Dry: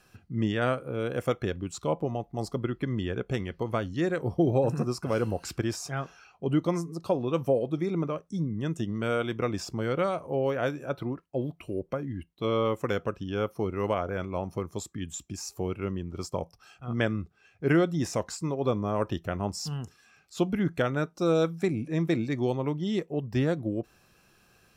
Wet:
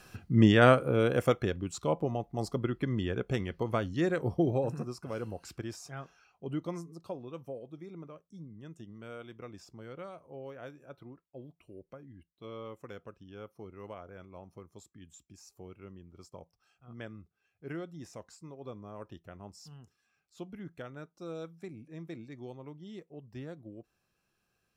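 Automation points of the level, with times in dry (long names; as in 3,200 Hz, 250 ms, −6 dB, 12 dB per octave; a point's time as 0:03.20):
0:00.84 +6.5 dB
0:01.53 −1.5 dB
0:04.26 −1.5 dB
0:04.93 −10 dB
0:06.84 −10 dB
0:07.46 −17 dB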